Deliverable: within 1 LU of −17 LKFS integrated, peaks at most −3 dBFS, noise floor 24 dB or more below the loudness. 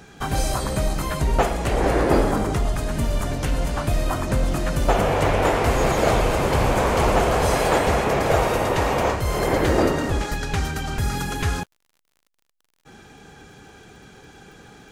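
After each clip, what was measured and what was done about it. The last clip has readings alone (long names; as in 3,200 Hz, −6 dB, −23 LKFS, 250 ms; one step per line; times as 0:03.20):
crackle rate 41 per second; integrated loudness −22.0 LKFS; sample peak −4.0 dBFS; target loudness −17.0 LKFS
→ click removal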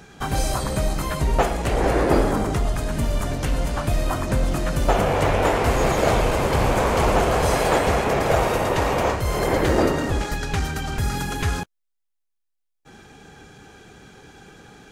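crackle rate 0.27 per second; integrated loudness −22.0 LKFS; sample peak −4.0 dBFS; target loudness −17.0 LKFS
→ level +5 dB
brickwall limiter −3 dBFS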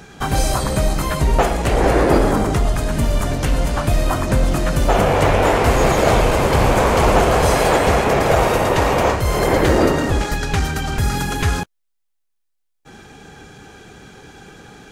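integrated loudness −17.0 LKFS; sample peak −3.0 dBFS; background noise floor −70 dBFS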